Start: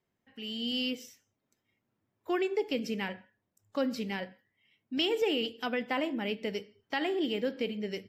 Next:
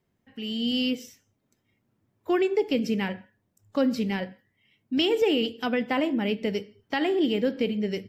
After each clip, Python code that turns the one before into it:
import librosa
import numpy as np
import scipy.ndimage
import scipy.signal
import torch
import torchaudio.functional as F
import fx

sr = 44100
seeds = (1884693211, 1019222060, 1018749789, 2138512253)

y = fx.low_shelf(x, sr, hz=320.0, db=8.0)
y = y * librosa.db_to_amplitude(3.5)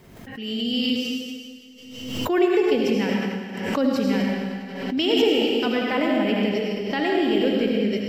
y = fx.rev_freeverb(x, sr, rt60_s=1.8, hf_ratio=1.0, predelay_ms=45, drr_db=-2.0)
y = fx.pre_swell(y, sr, db_per_s=47.0)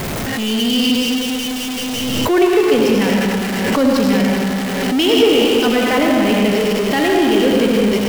y = x + 0.5 * 10.0 ** (-22.0 / 20.0) * np.sign(x)
y = fx.echo_stepped(y, sr, ms=104, hz=600.0, octaves=0.7, feedback_pct=70, wet_db=-9.0)
y = y * librosa.db_to_amplitude(4.5)